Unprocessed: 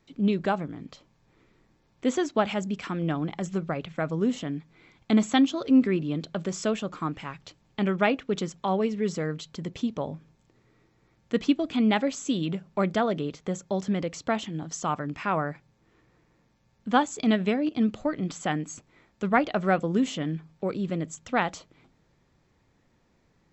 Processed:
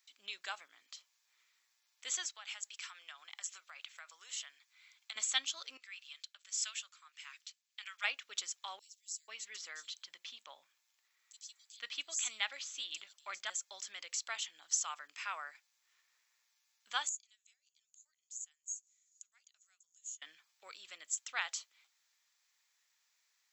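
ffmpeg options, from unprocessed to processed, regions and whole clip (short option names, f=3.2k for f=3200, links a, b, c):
-filter_complex "[0:a]asettb=1/sr,asplit=3[a][b][c];[a]atrim=end=2.294[d];[b]atrim=start=2.29:end=5.16,asetpts=PTS-STARTPTS,afade=t=in:d=0.004:c=qsin,afade=t=out:st=2.866:d=0.004:c=qsin,highpass=770,acompressor=threshold=-36dB:ratio=3:attack=3.2:release=140:knee=1:detection=peak[e];[c]atrim=start=5.156[f];[d][e]acrossfade=d=0.004:c1=hsin:c2=qsin[g];[g][f]acrossfade=d=0.004:c1=qsin:c2=hsin,asettb=1/sr,asplit=3[h][i][j];[h]atrim=end=5.774[k];[i]atrim=start=5.77:end=8.04,asetpts=PTS-STARTPTS,afade=t=in:d=0.004:c=qsin,afade=t=out:st=2.266:d=0.004:c=qsin,highpass=1.5k,acrossover=split=460[l][m];[l]aeval=exprs='val(0)*(1-0.7/2+0.7/2*cos(2*PI*1.6*n/s))':c=same[n];[m]aeval=exprs='val(0)*(1-0.7/2-0.7/2*cos(2*PI*1.6*n/s))':c=same[o];[n][o]amix=inputs=2:normalize=0[p];[j]atrim=start=8.036[q];[k][p]acrossfade=d=0.004:c1=hsin:c2=qsin[r];[r][q]acrossfade=d=0.004:c1=qsin:c2=hsin,asettb=1/sr,asplit=3[s][t][u];[s]atrim=end=8.794[v];[t]atrim=start=8.79:end=13.5,asetpts=PTS-STARTPTS,afade=t=in:d=0.004:c=qsin,afade=t=out:st=4.706:d=0.004:c=qsin,equalizer=f=440:t=o:w=0.22:g=-4.5,acrossover=split=5300[w][x];[w]adelay=490[y];[y][x]amix=inputs=2:normalize=0,atrim=end_sample=207711[z];[u]atrim=start=13.496[aa];[v][z]acrossfade=d=0.004:c1=hsin:c2=qsin[ab];[ab][aa]acrossfade=d=0.004:c1=qsin:c2=hsin,asettb=1/sr,asplit=3[ac][ad][ae];[ac]atrim=end=17.094[af];[ad]atrim=start=17.09:end=20.22,asetpts=PTS-STARTPTS,afade=t=in:d=0.004:c=qsin,afade=t=out:st=3.126:d=0.004:c=qsin,acompressor=mode=upward:threshold=-32dB:ratio=2.5:attack=3.2:release=140:knee=2.83:detection=peak,bandpass=f=6.8k:t=q:w=18[ag];[ae]atrim=start=20.216[ah];[af][ag]acrossfade=d=0.004:c1=hsin:c2=qsin[ai];[ai][ah]acrossfade=d=0.004:c1=qsin:c2=hsin,highpass=1.1k,aderivative,volume=5dB"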